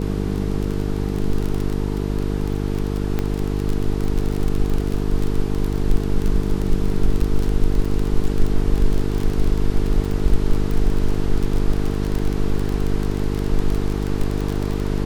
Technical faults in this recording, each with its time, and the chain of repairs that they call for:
buzz 50 Hz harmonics 9 -23 dBFS
crackle 25/s -20 dBFS
3.19 pop -10 dBFS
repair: de-click; de-hum 50 Hz, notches 9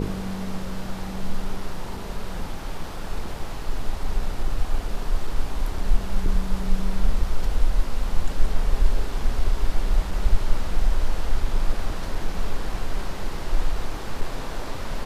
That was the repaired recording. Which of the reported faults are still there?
3.19 pop

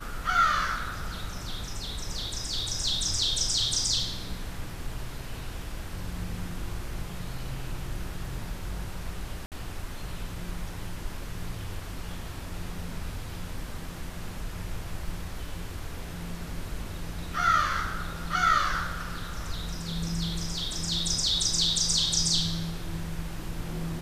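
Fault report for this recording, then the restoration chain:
9.46–9.52 gap 58 ms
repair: interpolate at 9.46, 58 ms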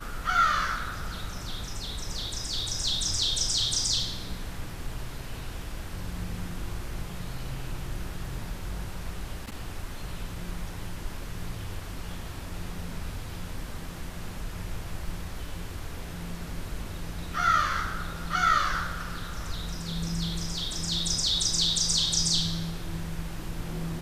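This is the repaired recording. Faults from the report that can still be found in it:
none

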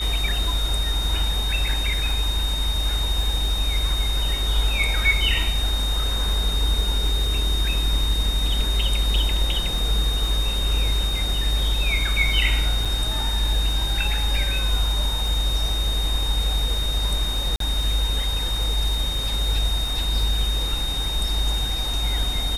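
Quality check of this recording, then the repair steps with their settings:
crackle 37/s -30 dBFS
tone 3700 Hz -26 dBFS
12.85 gap 4.7 ms
17.56–17.6 gap 43 ms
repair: de-click; notch 3700 Hz, Q 30; interpolate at 12.85, 4.7 ms; interpolate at 17.56, 43 ms

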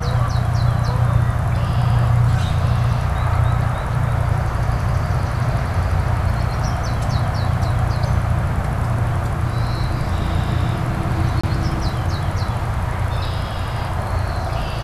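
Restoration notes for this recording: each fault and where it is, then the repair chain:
11.41–11.44 gap 25 ms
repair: interpolate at 11.41, 25 ms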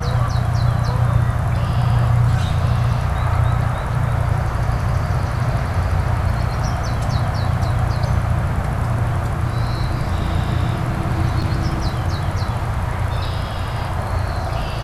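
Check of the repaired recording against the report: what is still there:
none

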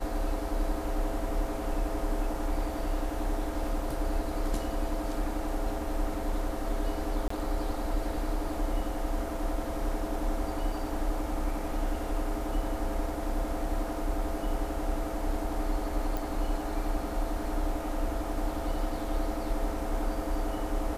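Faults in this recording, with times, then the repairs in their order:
7.28–7.3 gap 24 ms
16.17 pop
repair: de-click; interpolate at 7.28, 24 ms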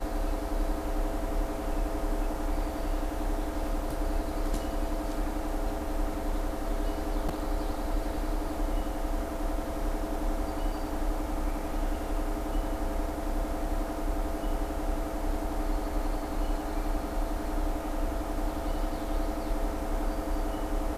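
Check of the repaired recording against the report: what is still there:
none

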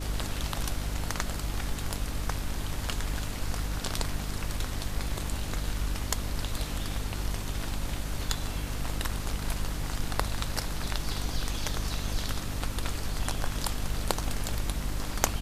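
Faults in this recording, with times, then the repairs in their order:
hum 50 Hz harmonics 6 -36 dBFS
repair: de-hum 50 Hz, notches 6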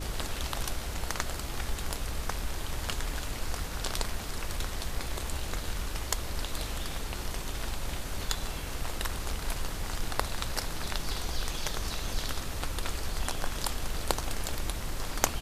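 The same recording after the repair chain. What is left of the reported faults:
none

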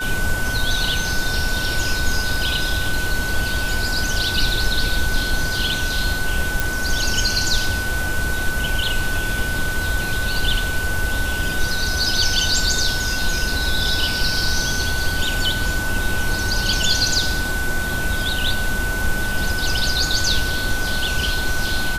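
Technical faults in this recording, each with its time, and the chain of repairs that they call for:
tone 1500 Hz -24 dBFS
6.6 pop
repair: de-click; notch 1500 Hz, Q 30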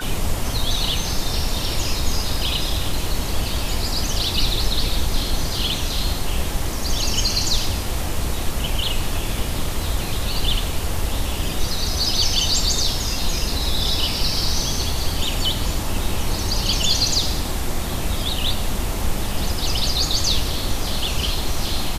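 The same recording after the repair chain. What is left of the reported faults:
none

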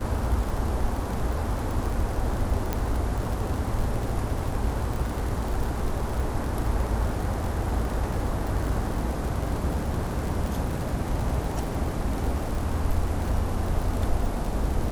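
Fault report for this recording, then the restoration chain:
crackle 59/s -29 dBFS
2.73 pop -12 dBFS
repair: de-click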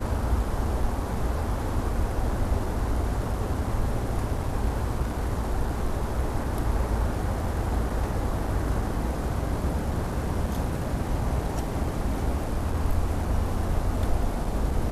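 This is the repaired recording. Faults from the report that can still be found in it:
none

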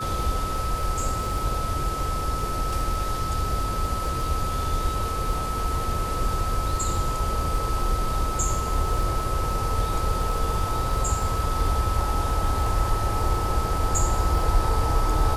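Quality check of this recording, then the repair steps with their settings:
crackle 20/s -29 dBFS
tone 1300 Hz -29 dBFS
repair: de-click; notch 1300 Hz, Q 30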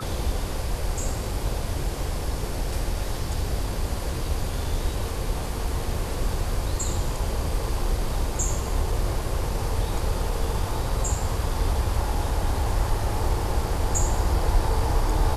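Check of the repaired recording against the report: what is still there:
none

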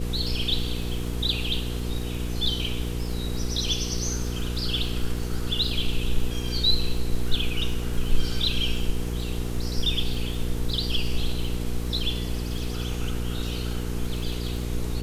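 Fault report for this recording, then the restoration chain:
crackle 24/s -31 dBFS
hum 60 Hz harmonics 8 -30 dBFS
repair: de-click; de-hum 60 Hz, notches 8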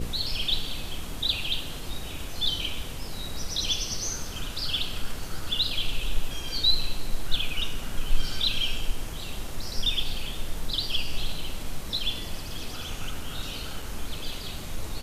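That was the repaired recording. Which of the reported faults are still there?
none

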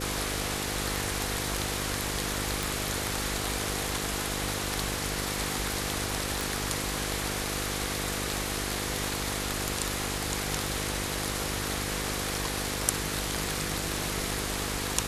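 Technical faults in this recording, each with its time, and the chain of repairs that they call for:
buzz 50 Hz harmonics 10 -36 dBFS
crackle 30/s -39 dBFS
2.63 pop
6.41 pop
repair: de-click; de-hum 50 Hz, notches 10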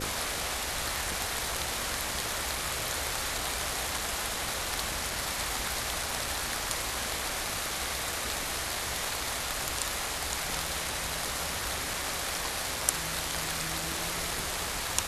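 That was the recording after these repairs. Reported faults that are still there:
6.41 pop

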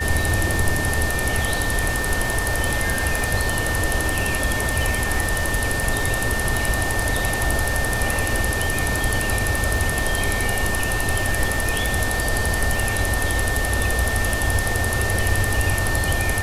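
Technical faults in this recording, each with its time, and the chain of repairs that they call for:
crackle 42/s -26 dBFS
tone 1800 Hz -25 dBFS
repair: de-click; notch 1800 Hz, Q 30

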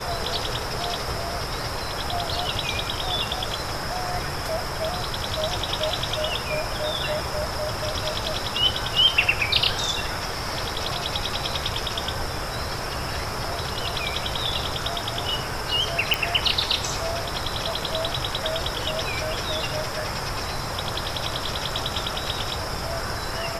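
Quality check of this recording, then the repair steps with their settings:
16.14 pop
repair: de-click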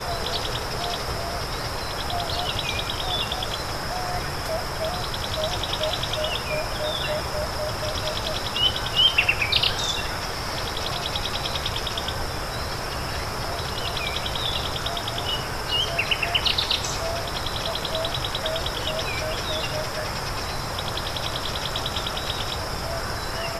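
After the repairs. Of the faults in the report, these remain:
none

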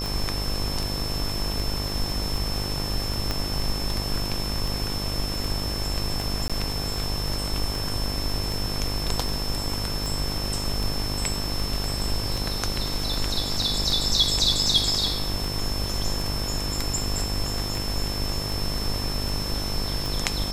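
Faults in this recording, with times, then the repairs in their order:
buzz 50 Hz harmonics 24 -31 dBFS
tick 78 rpm
tone 5300 Hz -31 dBFS
3.31 pop -11 dBFS
6.48–6.5 gap 16 ms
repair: de-click; de-hum 50 Hz, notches 24; notch 5300 Hz, Q 30; interpolate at 6.48, 16 ms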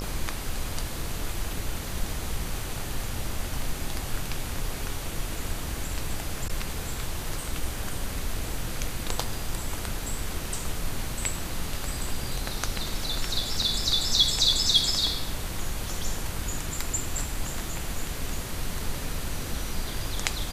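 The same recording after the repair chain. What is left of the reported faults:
3.31 pop

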